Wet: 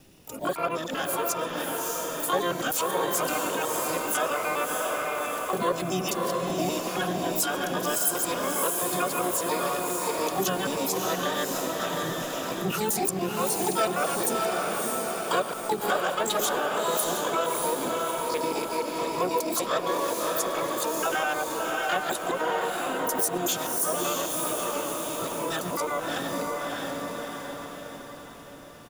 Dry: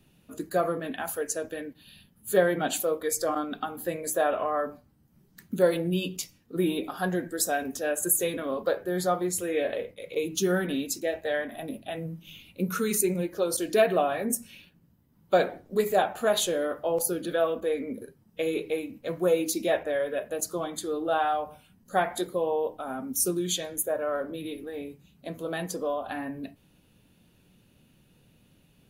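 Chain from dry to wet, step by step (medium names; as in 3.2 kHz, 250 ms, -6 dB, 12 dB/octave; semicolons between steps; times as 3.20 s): time reversed locally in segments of 97 ms; treble shelf 2.5 kHz +5 dB; harmony voices -7 st -17 dB, -4 st -11 dB, +12 st -1 dB; on a send: echo that smears into a reverb 634 ms, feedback 48%, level -3 dB; on the sum: compression 2:1, threshold -33 dBFS, peak gain reduction 11.5 dB; trim +3 dB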